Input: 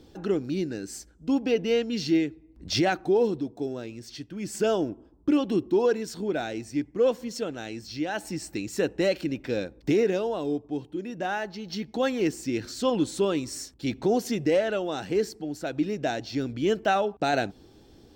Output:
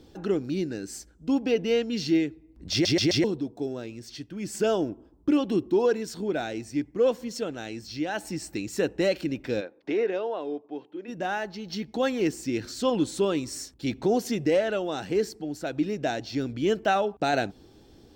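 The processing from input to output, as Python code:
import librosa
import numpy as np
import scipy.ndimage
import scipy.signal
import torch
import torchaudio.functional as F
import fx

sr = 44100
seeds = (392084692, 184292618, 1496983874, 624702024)

y = fx.bandpass_edges(x, sr, low_hz=400.0, high_hz=2800.0, at=(9.6, 11.07), fade=0.02)
y = fx.edit(y, sr, fx.stutter_over(start_s=2.72, slice_s=0.13, count=4), tone=tone)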